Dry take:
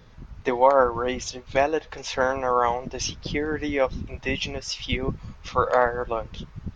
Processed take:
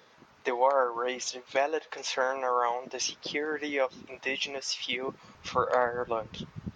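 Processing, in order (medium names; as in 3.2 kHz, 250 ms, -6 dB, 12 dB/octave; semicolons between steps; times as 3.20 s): high-pass 410 Hz 12 dB/octave, from 5.35 s 130 Hz; compression 1.5:1, threshold -31 dBFS, peak gain reduction 7 dB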